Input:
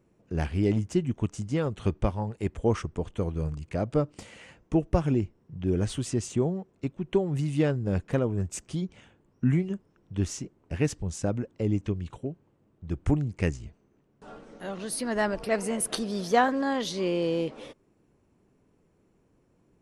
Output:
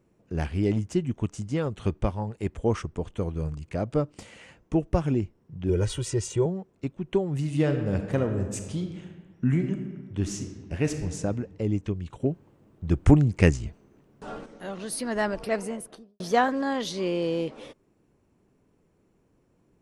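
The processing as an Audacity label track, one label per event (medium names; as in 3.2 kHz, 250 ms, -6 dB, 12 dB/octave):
5.690000	6.460000	comb 2.1 ms, depth 85%
7.360000	11.150000	reverb throw, RT60 1.5 s, DRR 5.5 dB
12.200000	14.460000	gain +8 dB
15.430000	16.200000	studio fade out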